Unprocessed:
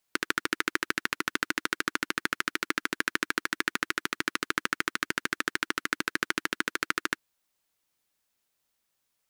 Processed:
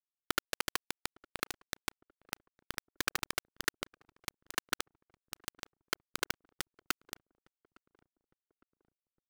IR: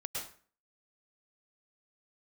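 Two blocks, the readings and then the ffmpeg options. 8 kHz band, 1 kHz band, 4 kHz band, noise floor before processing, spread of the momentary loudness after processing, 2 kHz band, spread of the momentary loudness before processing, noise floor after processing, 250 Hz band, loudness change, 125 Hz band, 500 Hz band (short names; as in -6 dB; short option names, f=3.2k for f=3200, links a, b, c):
-4.0 dB, -9.5 dB, -6.0 dB, -79 dBFS, 10 LU, -12.5 dB, 2 LU, under -85 dBFS, -13.0 dB, -9.0 dB, -6.0 dB, -8.5 dB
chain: -filter_complex "[0:a]aeval=exprs='val(0)+0.5*0.0841*sgn(val(0))':c=same,agate=range=-27dB:threshold=-22dB:ratio=16:detection=peak,aeval=exprs='0.0473*(cos(1*acos(clip(val(0)/0.0473,-1,1)))-cos(1*PI/2))+0.00106*(cos(2*acos(clip(val(0)/0.0473,-1,1)))-cos(2*PI/2))+0.000944*(cos(3*acos(clip(val(0)/0.0473,-1,1)))-cos(3*PI/2))+0.000422*(cos(7*acos(clip(val(0)/0.0473,-1,1)))-cos(7*PI/2))+0.00473*(cos(8*acos(clip(val(0)/0.0473,-1,1)))-cos(8*PI/2))':c=same,acrossover=split=280 5400:gain=0.0891 1 0.224[a][b][c];[a][b][c]amix=inputs=3:normalize=0,bandreject=f=60:t=h:w=6,bandreject=f=120:t=h:w=6,bandreject=f=180:t=h:w=6,bandreject=f=240:t=h:w=6,bandreject=f=300:t=h:w=6,bandreject=f=360:t=h:w=6,aeval=exprs='val(0)+0.000891*(sin(2*PI*50*n/s)+sin(2*PI*2*50*n/s)/2+sin(2*PI*3*50*n/s)/3+sin(2*PI*4*50*n/s)/4+sin(2*PI*5*50*n/s)/5)':c=same,acrusher=bits=4:mix=0:aa=0.000001,asplit=2[d][e];[e]adelay=859,lowpass=f=830:p=1,volume=-23dB,asplit=2[f][g];[g]adelay=859,lowpass=f=830:p=1,volume=0.55,asplit=2[h][i];[i]adelay=859,lowpass=f=830:p=1,volume=0.55,asplit=2[j][k];[k]adelay=859,lowpass=f=830:p=1,volume=0.55[l];[d][f][h][j][l]amix=inputs=5:normalize=0,volume=6dB"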